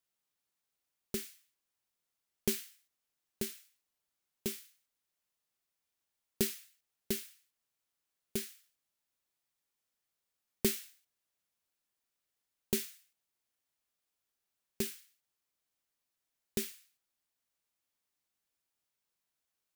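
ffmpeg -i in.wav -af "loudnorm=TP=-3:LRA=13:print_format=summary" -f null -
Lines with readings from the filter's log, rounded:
Input Integrated:    -38.2 LUFS
Input True Peak:     -12.9 dBTP
Input LRA:             6.0 LU
Input Threshold:     -49.5 LUFS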